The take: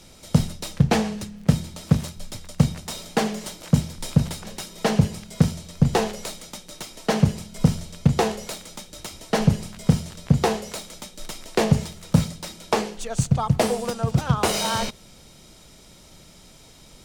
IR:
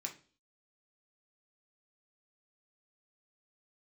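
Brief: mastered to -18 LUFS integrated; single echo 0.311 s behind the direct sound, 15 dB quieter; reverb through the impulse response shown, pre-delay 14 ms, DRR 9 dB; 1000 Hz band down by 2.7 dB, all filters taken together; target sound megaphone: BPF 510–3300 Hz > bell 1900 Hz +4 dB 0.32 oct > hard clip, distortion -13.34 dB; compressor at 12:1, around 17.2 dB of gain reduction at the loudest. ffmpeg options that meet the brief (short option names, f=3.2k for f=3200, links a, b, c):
-filter_complex "[0:a]equalizer=f=1k:t=o:g=-3,acompressor=threshold=-29dB:ratio=12,aecho=1:1:311:0.178,asplit=2[a][b];[1:a]atrim=start_sample=2205,adelay=14[c];[b][c]afir=irnorm=-1:irlink=0,volume=-7.5dB[d];[a][d]amix=inputs=2:normalize=0,highpass=510,lowpass=3.3k,equalizer=f=1.9k:t=o:w=0.32:g=4,asoftclip=type=hard:threshold=-29.5dB,volume=24.5dB"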